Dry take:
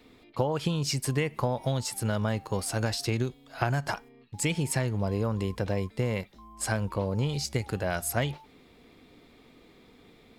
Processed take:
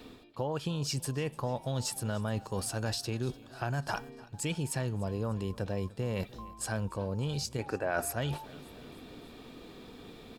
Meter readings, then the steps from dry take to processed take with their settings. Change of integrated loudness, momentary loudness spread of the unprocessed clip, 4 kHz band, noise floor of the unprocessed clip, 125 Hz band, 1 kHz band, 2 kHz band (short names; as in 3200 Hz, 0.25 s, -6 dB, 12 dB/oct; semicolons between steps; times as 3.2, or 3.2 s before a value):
-4.5 dB, 6 LU, -4.0 dB, -57 dBFS, -5.0 dB, -4.5 dB, -5.0 dB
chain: spectral gain 7.59–8.12, 230–2700 Hz +12 dB; notch 2100 Hz, Q 5.3; reverse; compressor 4:1, threshold -40 dBFS, peak gain reduction 21 dB; reverse; feedback echo 0.298 s, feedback 56%, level -21.5 dB; gain +7 dB